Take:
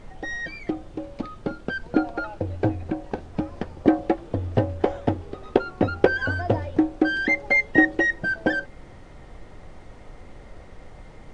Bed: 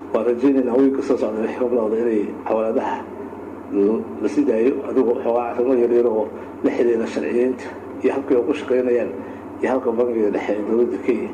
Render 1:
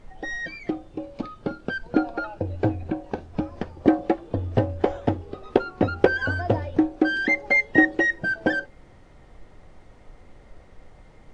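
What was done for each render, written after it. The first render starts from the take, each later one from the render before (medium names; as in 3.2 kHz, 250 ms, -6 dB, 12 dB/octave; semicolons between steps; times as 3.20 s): noise print and reduce 6 dB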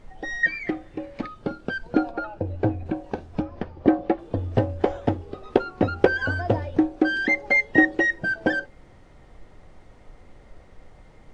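0.43–1.27 s: peaking EQ 1.9 kHz +14 dB 0.57 oct; 2.11–2.86 s: treble shelf 3.4 kHz -8.5 dB; 3.42–4.19 s: distance through air 140 m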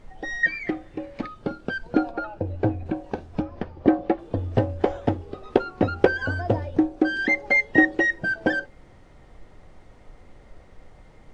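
6.11–7.19 s: peaking EQ 2.3 kHz -3 dB 2.5 oct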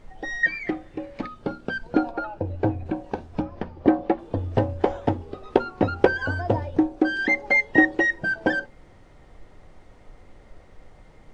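hum notches 60/120/180/240 Hz; dynamic bell 930 Hz, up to +6 dB, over -47 dBFS, Q 5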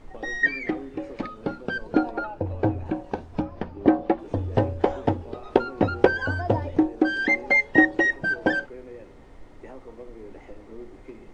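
add bed -24 dB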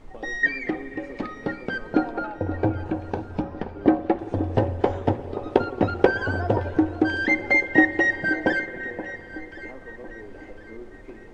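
echo whose repeats swap between lows and highs 527 ms, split 1.4 kHz, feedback 59%, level -11 dB; spring tank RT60 3.8 s, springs 56 ms, chirp 60 ms, DRR 13.5 dB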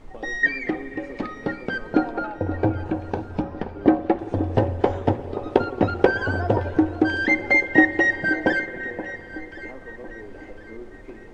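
trim +1.5 dB; peak limiter -1 dBFS, peak gain reduction 1 dB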